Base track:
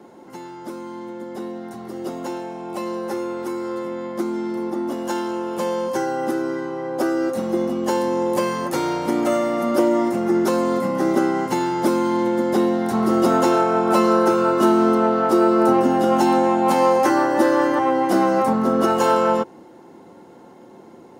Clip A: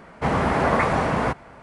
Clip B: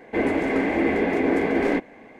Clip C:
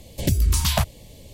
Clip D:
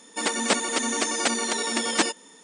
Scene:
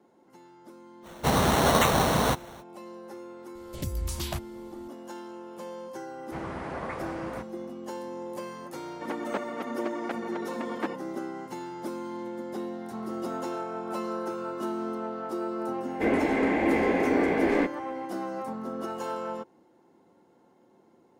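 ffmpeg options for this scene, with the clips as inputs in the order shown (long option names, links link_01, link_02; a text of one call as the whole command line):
ffmpeg -i bed.wav -i cue0.wav -i cue1.wav -i cue2.wav -i cue3.wav -filter_complex "[1:a]asplit=2[link_01][link_02];[0:a]volume=-16.5dB[link_03];[link_01]acrusher=samples=9:mix=1:aa=0.000001[link_04];[4:a]lowpass=1400[link_05];[link_04]atrim=end=1.62,asetpts=PTS-STARTPTS,volume=-1.5dB,afade=type=in:duration=0.05,afade=type=out:start_time=1.57:duration=0.05,adelay=1020[link_06];[3:a]atrim=end=1.33,asetpts=PTS-STARTPTS,volume=-12.5dB,afade=type=in:duration=0.004:curve=hsin,afade=type=out:start_time=1.326:duration=0.004:curve=hsin,adelay=3550[link_07];[link_02]atrim=end=1.62,asetpts=PTS-STARTPTS,volume=-16dB,afade=type=in:duration=0.004:curve=hsin,afade=type=out:start_time=1.616:duration=0.004:curve=hsin,adelay=269010S[link_08];[link_05]atrim=end=2.43,asetpts=PTS-STARTPTS,volume=-6.5dB,afade=type=in:duration=0.004:curve=hsin,afade=type=out:start_time=2.426:duration=0.004:curve=hsin,adelay=8840[link_09];[2:a]atrim=end=2.19,asetpts=PTS-STARTPTS,volume=-3dB,afade=type=in:duration=0.004:curve=hsin,afade=type=out:start_time=2.186:duration=0.004:curve=hsin,adelay=15870[link_10];[link_03][link_06][link_07][link_08][link_09][link_10]amix=inputs=6:normalize=0" out.wav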